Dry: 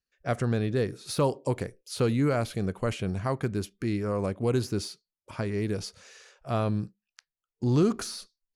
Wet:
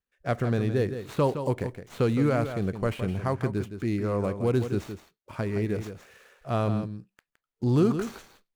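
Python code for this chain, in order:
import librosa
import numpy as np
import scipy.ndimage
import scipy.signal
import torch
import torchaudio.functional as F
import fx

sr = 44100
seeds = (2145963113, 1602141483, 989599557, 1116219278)

p1 = scipy.ndimage.median_filter(x, 9, mode='constant')
p2 = p1 + fx.echo_single(p1, sr, ms=165, db=-9.5, dry=0)
y = F.gain(torch.from_numpy(p2), 1.0).numpy()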